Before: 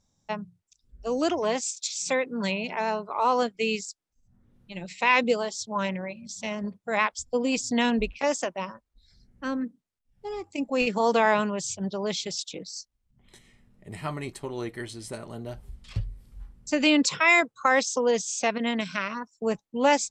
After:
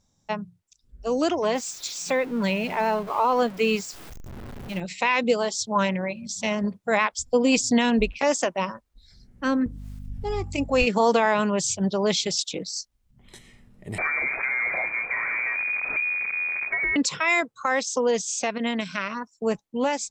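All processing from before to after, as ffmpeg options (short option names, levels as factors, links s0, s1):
-filter_complex "[0:a]asettb=1/sr,asplit=3[s0][s1][s2];[s0]atrim=end=1.544[s3];[s1]atrim=start=1.54:end=4.8,asetpts=PTS-STARTPTS,afade=t=in:d=0.004:c=qsin,afade=t=out:st=3.256:d=0.004:c=qsin,aeval=exprs='val(0)+0.5*0.0133*sgn(val(0))':c=same,equalizer=f=8200:w=0.42:g=-7[s4];[s2]atrim=start=4.796[s5];[s3][s4]acrossfade=d=0.004:c1=hsin:c2=qsin[s6];[s6][s5]acrossfade=d=0.004:c1=qsin:c2=hsin,asettb=1/sr,asplit=3[s7][s8][s9];[s7]atrim=end=9.664[s10];[s8]atrim=start=9.66:end=10.84,asetpts=PTS-STARTPTS,afade=t=in:d=0.004:c=qsin,afade=t=out:st=1.176:d=0.004:c=qsin,lowshelf=f=130:t=q:w=3:g=13.5,acompressor=mode=upward:threshold=0.0224:ratio=2.5:attack=3.2:release=140:knee=2.83:detection=peak,aeval=exprs='val(0)+0.00708*(sin(2*PI*50*n/s)+sin(2*PI*2*50*n/s)/2+sin(2*PI*3*50*n/s)/3+sin(2*PI*4*50*n/s)/4+sin(2*PI*5*50*n/s)/5)':c=same[s11];[s9]atrim=start=10.836[s12];[s10][s11]acrossfade=d=0.004:c1=hsin:c2=qsin[s13];[s13][s12]acrossfade=d=0.004:c1=qsin:c2=hsin,asettb=1/sr,asplit=3[s14][s15][s16];[s14]atrim=end=13.984[s17];[s15]atrim=start=13.98:end=16.96,asetpts=PTS-STARTPTS,afade=t=in:d=0.004:c=qsin,afade=t=out:st=2.976:d=0.004:c=qsin,aeval=exprs='val(0)+0.5*0.0422*sgn(val(0))':c=same,lowpass=f=2100:t=q:w=0.5098,lowpass=f=2100:t=q:w=0.6013,lowpass=f=2100:t=q:w=0.9,lowpass=f=2100:t=q:w=2.563,afreqshift=-2500,acompressor=threshold=0.0355:ratio=3:attack=3.2:release=140:knee=1:detection=peak[s18];[s16]atrim=start=16.956[s19];[s17][s18]acrossfade=d=0.004:c1=hsin:c2=qsin[s20];[s20][s19]acrossfade=d=0.004:c1=qsin:c2=hsin,alimiter=limit=0.158:level=0:latency=1:release=217,dynaudnorm=f=400:g=21:m=1.5,volume=1.41"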